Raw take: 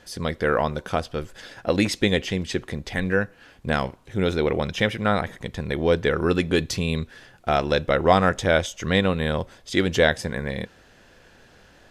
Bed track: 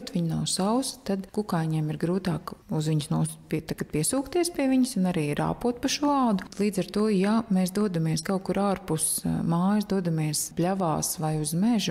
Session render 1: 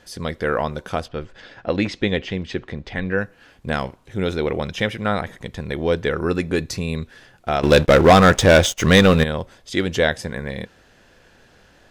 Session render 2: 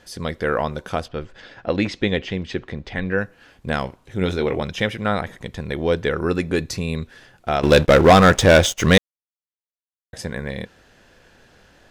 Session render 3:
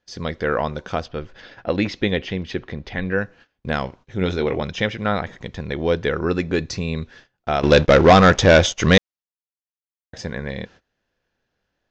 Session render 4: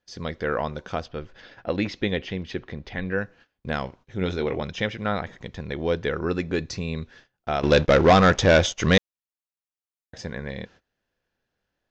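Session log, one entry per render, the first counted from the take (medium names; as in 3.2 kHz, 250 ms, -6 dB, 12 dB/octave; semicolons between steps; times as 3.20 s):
1.08–3.18 s: low-pass 3.9 kHz; 6.19–7.02 s: peaking EQ 3.2 kHz -10.5 dB 0.28 oct; 7.63–9.24 s: waveshaping leveller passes 3
4.19–4.63 s: doubling 22 ms -8 dB; 8.98–10.13 s: mute
gate -44 dBFS, range -23 dB; steep low-pass 6.7 kHz 48 dB/octave
trim -4.5 dB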